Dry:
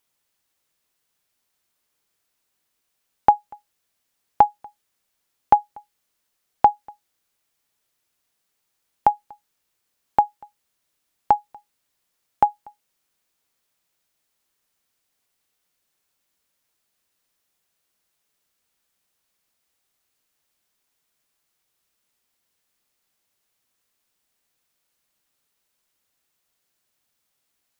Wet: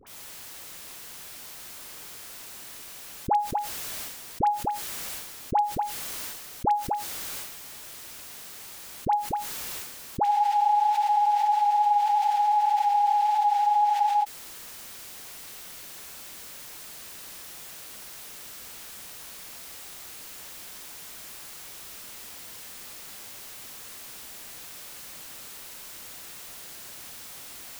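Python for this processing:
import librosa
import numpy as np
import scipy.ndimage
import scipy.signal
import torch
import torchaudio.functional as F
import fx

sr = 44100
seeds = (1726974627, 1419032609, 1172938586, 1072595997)

y = fx.dispersion(x, sr, late='highs', ms=69.0, hz=990.0)
y = fx.transient(y, sr, attack_db=-5, sustain_db=11)
y = fx.spec_freeze(y, sr, seeds[0], at_s=10.26, hold_s=3.96)
y = fx.env_flatten(y, sr, amount_pct=70)
y = y * librosa.db_to_amplitude(-7.5)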